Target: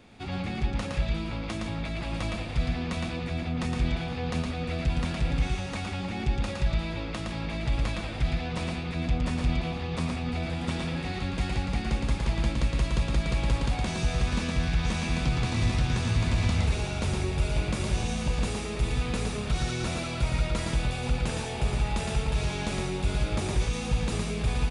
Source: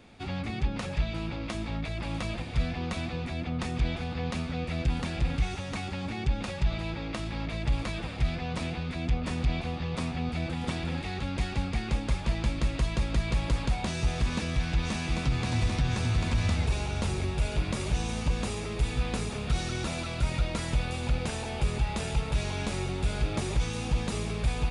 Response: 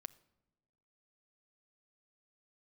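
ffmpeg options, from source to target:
-af "aecho=1:1:114:0.668"

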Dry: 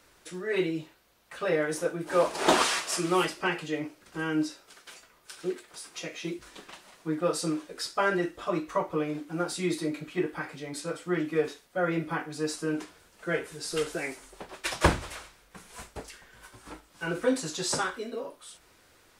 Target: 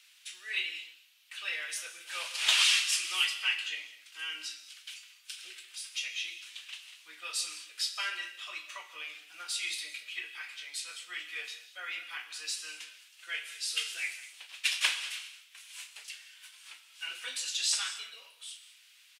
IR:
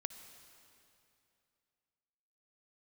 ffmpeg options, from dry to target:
-filter_complex "[0:a]highpass=f=2.8k:t=q:w=2.6,asplit=2[a][b];[b]adelay=35,volume=-13dB[c];[a][c]amix=inputs=2:normalize=0[d];[1:a]atrim=start_sample=2205,afade=t=out:st=0.2:d=0.01,atrim=end_sample=9261,asetrate=29106,aresample=44100[e];[d][e]afir=irnorm=-1:irlink=0"

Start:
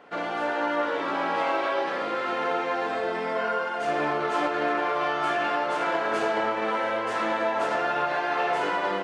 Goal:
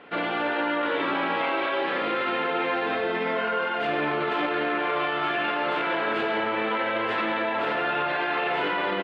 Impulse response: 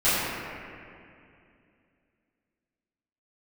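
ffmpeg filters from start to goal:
-af "firequalizer=gain_entry='entry(350,0);entry(650,-5);entry(2500,3);entry(3600,1);entry(6000,-21)':delay=0.05:min_phase=1,alimiter=limit=-23dB:level=0:latency=1:release=13,volume=5dB"

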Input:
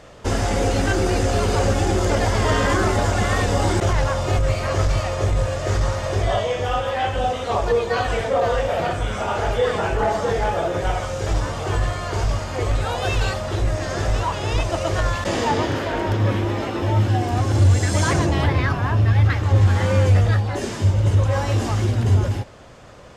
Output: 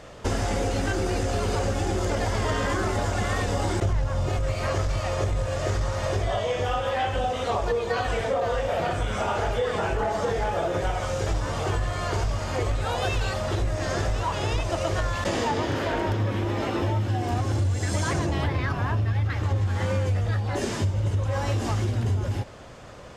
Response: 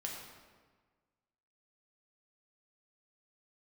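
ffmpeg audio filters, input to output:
-filter_complex "[0:a]asettb=1/sr,asplit=3[a][b][c];[a]atrim=end=3.824[d];[b]atrim=start=3.82:end=4.29,asetpts=PTS-STARTPTS,afade=t=in:d=0.004:c=qsin,afade=t=out:st=0.466:d=0.004:c=qsin,lowshelf=f=260:g=10.5[e];[c]atrim=start=4.286[f];[d][e]acrossfade=d=0.004:c1=hsin:c2=qsin[g];[g][f]acrossfade=d=0.004:c1=qsin:c2=hsin,acompressor=threshold=-22dB:ratio=6"

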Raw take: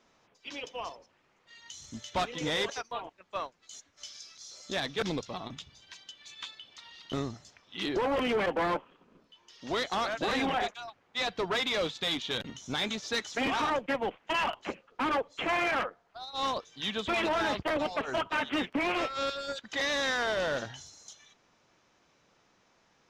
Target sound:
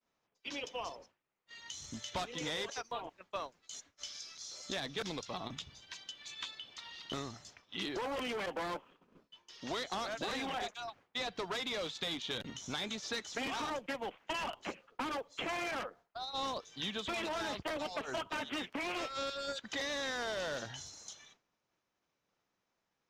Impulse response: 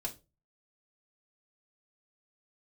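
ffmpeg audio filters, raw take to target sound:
-filter_complex "[0:a]acrossover=split=680|4200[a][b][c];[a]acompressor=threshold=-44dB:ratio=4[d];[b]acompressor=threshold=-43dB:ratio=4[e];[c]acompressor=threshold=-47dB:ratio=4[f];[d][e][f]amix=inputs=3:normalize=0,agate=range=-33dB:threshold=-55dB:ratio=3:detection=peak,volume=1.5dB"

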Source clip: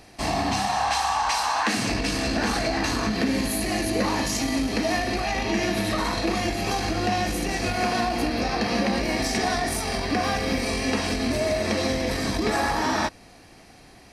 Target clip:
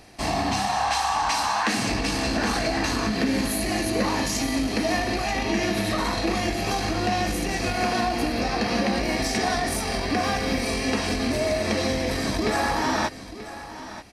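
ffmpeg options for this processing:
-af "aecho=1:1:934:0.2"

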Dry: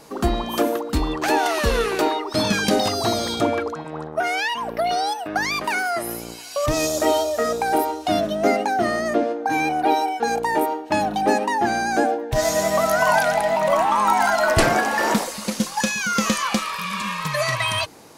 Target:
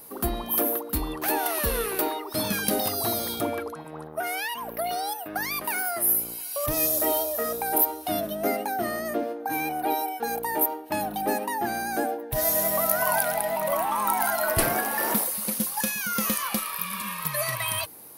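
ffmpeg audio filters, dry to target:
-af "aexciter=amount=10.7:drive=7.1:freq=10k,asoftclip=type=tanh:threshold=-2dB,volume=-7.5dB"

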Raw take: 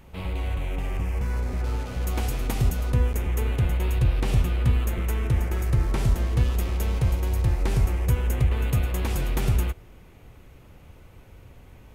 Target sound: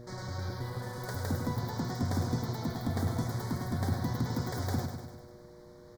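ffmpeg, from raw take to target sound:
-af "aeval=exprs='val(0)+0.02*(sin(2*PI*60*n/s)+sin(2*PI*2*60*n/s)/2+sin(2*PI*3*60*n/s)/3+sin(2*PI*4*60*n/s)/4+sin(2*PI*5*60*n/s)/5)':c=same,asetrate=88200,aresample=44100,asuperstop=centerf=2700:order=4:qfactor=1.8,lowshelf=f=230:g=-4.5,bandreject=f=60:t=h:w=6,bandreject=f=120:t=h:w=6,bandreject=f=180:t=h:w=6,bandreject=f=240:t=h:w=6,aecho=1:1:99|198|297|396|495|594|693|792:0.447|0.264|0.155|0.0917|0.0541|0.0319|0.0188|0.0111,volume=-7dB"

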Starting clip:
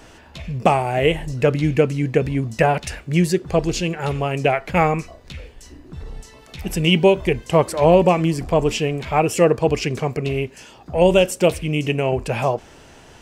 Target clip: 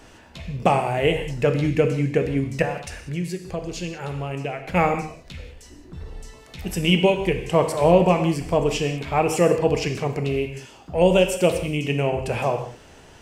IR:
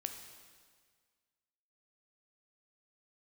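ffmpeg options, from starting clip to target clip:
-filter_complex "[0:a]asettb=1/sr,asplit=3[a][b][c];[a]atrim=end=2.624[d];[b]atrim=start=2.62:end=4.68,asetpts=PTS-STARTPTS,afade=t=in:d=0.004:c=qsin,afade=t=out:st=2.056:d=0.004:c=qsin,acompressor=threshold=-27dB:ratio=2.5[e];[c]atrim=start=4.676[f];[d][e]acrossfade=d=0.004:c1=hsin:c2=qsin[g];[g][f]acrossfade=d=0.004:c1=qsin:c2=hsin[h];[1:a]atrim=start_sample=2205,afade=t=out:st=0.27:d=0.01,atrim=end_sample=12348,asetrate=48510,aresample=44100[i];[h][i]afir=irnorm=-1:irlink=0"

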